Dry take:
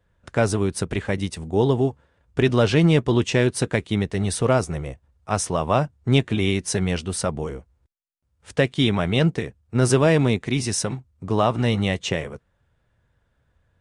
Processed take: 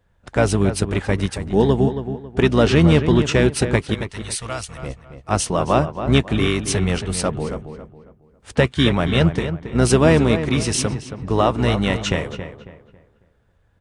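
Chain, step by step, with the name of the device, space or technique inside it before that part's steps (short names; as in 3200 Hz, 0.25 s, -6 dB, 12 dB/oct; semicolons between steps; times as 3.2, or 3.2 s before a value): 3.94–4.83 passive tone stack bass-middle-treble 10-0-10; octave pedal (harmoniser -12 st -8 dB); darkening echo 0.274 s, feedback 33%, low-pass 2600 Hz, level -9.5 dB; gain +2.5 dB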